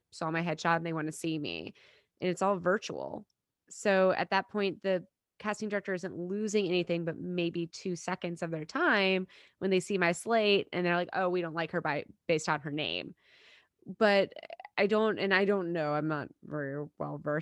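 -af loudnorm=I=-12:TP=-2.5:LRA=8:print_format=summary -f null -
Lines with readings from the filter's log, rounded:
Input Integrated:    -31.4 LUFS
Input True Peak:     -11.1 dBTP
Input LRA:             3.5 LU
Input Threshold:     -41.7 LUFS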